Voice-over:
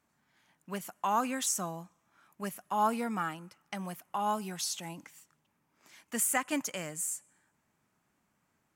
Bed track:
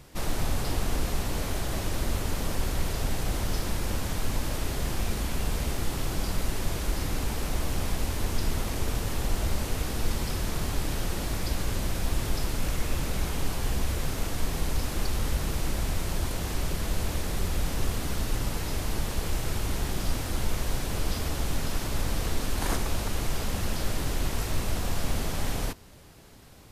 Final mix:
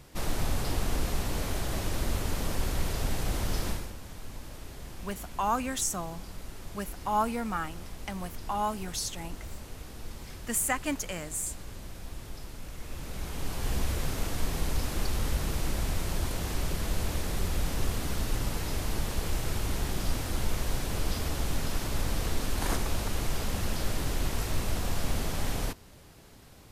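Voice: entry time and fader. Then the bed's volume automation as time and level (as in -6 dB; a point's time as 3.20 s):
4.35 s, +1.0 dB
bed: 3.70 s -1.5 dB
3.94 s -13.5 dB
12.71 s -13.5 dB
13.75 s -1.5 dB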